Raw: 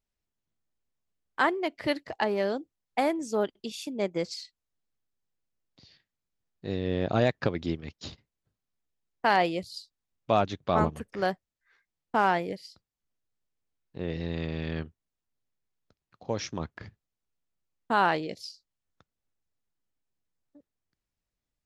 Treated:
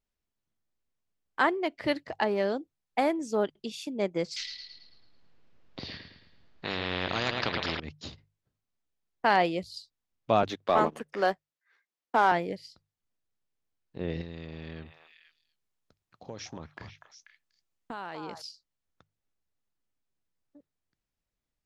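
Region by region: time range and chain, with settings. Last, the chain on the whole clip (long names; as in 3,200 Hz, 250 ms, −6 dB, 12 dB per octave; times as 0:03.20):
0:04.36–0:07.80: high-frequency loss of the air 200 metres + bucket-brigade delay 109 ms, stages 4,096, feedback 47%, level −9.5 dB + every bin compressed towards the loudest bin 4 to 1
0:10.43–0:12.32: Bessel high-pass filter 310 Hz, order 4 + leveller curve on the samples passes 1
0:14.21–0:18.42: high-shelf EQ 5,300 Hz +6.5 dB + downward compressor 4 to 1, threshold −37 dBFS + echo through a band-pass that steps 243 ms, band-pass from 970 Hz, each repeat 1.4 octaves, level −3 dB
whole clip: high-shelf EQ 8,500 Hz −7.5 dB; mains-hum notches 50/100/150 Hz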